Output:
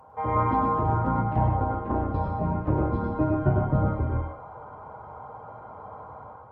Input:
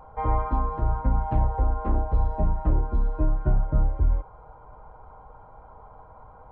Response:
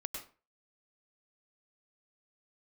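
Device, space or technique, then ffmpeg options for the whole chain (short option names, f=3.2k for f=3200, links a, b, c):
far-field microphone of a smart speaker: -filter_complex "[0:a]asplit=3[a][b][c];[a]afade=t=out:st=1.04:d=0.02[d];[b]agate=range=-10dB:threshold=-21dB:ratio=16:detection=peak,afade=t=in:st=1.04:d=0.02,afade=t=out:st=2.69:d=0.02[e];[c]afade=t=in:st=2.69:d=0.02[f];[d][e][f]amix=inputs=3:normalize=0[g];[1:a]atrim=start_sample=2205[h];[g][h]afir=irnorm=-1:irlink=0,highpass=f=92:w=0.5412,highpass=f=92:w=1.3066,dynaudnorm=f=140:g=5:m=8dB" -ar 48000 -c:a libopus -b:a 24k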